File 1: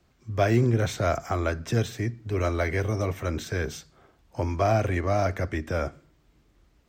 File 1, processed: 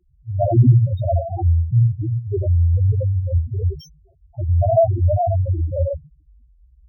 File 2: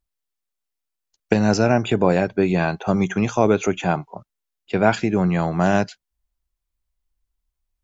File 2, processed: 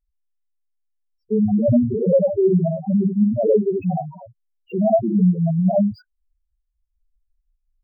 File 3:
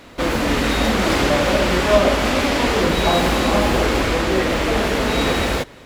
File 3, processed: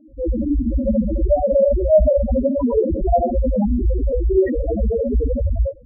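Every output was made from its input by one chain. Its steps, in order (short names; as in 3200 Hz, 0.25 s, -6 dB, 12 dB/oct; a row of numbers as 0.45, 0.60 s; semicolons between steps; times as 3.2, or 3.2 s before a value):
non-linear reverb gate 0.1 s rising, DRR -1.5 dB; loudest bins only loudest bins 2; decimation joined by straight lines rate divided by 2×; match loudness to -19 LUFS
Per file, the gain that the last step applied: +8.5, +3.5, +5.0 dB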